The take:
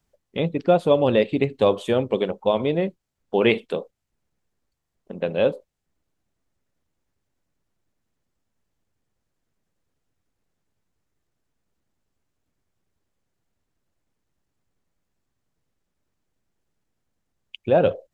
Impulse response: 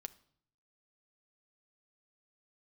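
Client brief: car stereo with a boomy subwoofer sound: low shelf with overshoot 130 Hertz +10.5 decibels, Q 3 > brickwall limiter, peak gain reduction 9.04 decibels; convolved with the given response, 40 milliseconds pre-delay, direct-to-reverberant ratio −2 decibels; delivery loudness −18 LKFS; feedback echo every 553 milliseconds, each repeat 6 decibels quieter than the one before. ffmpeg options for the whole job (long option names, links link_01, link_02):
-filter_complex "[0:a]aecho=1:1:553|1106|1659|2212|2765|3318:0.501|0.251|0.125|0.0626|0.0313|0.0157,asplit=2[link_01][link_02];[1:a]atrim=start_sample=2205,adelay=40[link_03];[link_02][link_03]afir=irnorm=-1:irlink=0,volume=6.5dB[link_04];[link_01][link_04]amix=inputs=2:normalize=0,lowshelf=frequency=130:width_type=q:width=3:gain=10.5,volume=3dB,alimiter=limit=-6dB:level=0:latency=1"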